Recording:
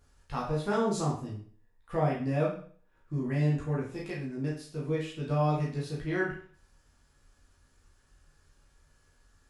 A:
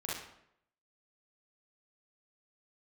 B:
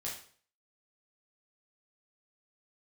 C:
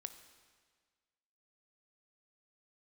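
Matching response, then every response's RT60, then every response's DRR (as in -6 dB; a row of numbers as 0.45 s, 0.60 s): B; 0.75 s, 0.50 s, 1.6 s; -7.0 dB, -5.0 dB, 9.0 dB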